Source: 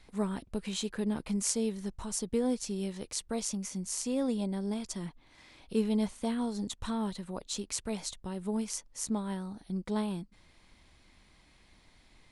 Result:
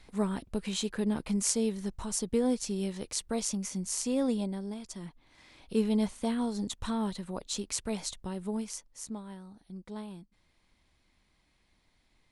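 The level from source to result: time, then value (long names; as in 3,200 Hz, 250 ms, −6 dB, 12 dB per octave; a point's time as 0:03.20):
0:04.33 +2 dB
0:04.76 −5.5 dB
0:05.82 +1.5 dB
0:08.27 +1.5 dB
0:09.32 −9 dB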